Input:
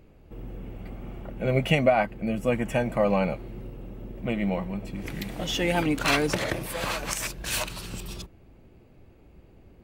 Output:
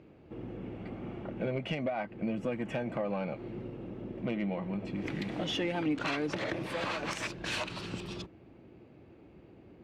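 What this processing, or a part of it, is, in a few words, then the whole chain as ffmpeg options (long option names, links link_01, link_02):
AM radio: -af "highpass=110,lowpass=4000,acompressor=threshold=-30dB:ratio=6,asoftclip=type=tanh:threshold=-23.5dB,equalizer=frequency=320:width=3.2:gain=5"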